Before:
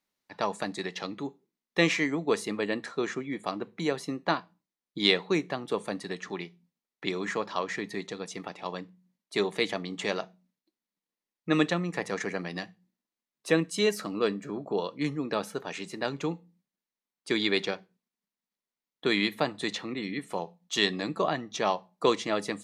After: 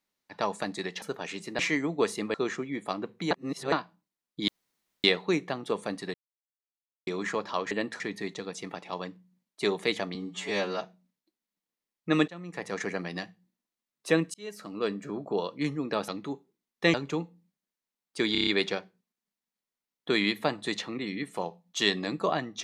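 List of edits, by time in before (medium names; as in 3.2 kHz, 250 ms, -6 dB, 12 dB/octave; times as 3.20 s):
1.02–1.88 s: swap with 15.48–16.05 s
2.63–2.92 s: move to 7.73 s
3.89–4.30 s: reverse
5.06 s: insert room tone 0.56 s
6.16–7.09 s: mute
9.88–10.21 s: stretch 2×
11.68–12.25 s: fade in, from -23 dB
13.74–14.45 s: fade in
17.43 s: stutter 0.03 s, 6 plays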